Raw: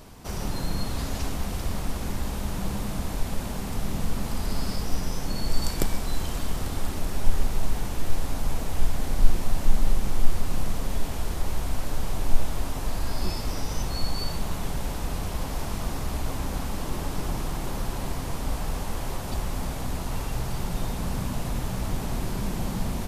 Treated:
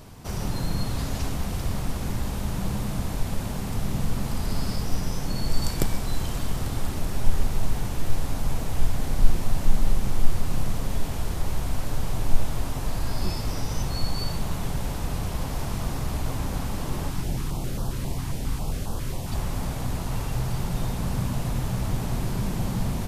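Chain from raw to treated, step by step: bell 120 Hz +6.5 dB 0.88 oct; 17.1–19.34 stepped notch 7.4 Hz 520–2100 Hz

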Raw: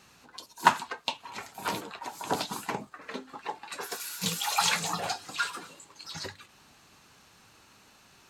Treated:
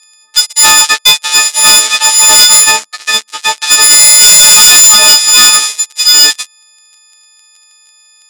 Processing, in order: frequency quantiser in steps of 6 st; sample leveller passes 5; weighting filter ITU-R 468; soft clip -4.5 dBFS, distortion -6 dB; 2.57–3.58 upward expander 1.5:1, over -21 dBFS; gain +3.5 dB

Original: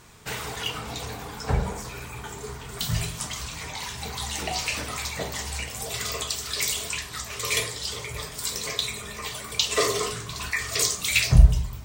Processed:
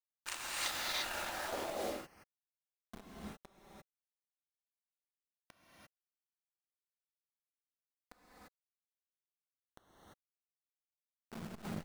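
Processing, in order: Wiener smoothing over 41 samples; spectral gate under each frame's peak -20 dB weak; bell 150 Hz -13 dB 1.4 oct; compressor 6:1, threshold -47 dBFS, peak gain reduction 17.5 dB; low-pass sweep 8800 Hz -> 180 Hz, 0.34–2.06; bit-crush 9-bit; non-linear reverb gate 0.37 s rising, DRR -5.5 dB; core saturation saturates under 560 Hz; gain +8 dB

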